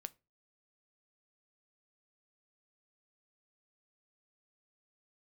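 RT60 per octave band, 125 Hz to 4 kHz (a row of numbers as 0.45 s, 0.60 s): 0.40 s, 0.35 s, 0.30 s, 0.25 s, 0.25 s, 0.20 s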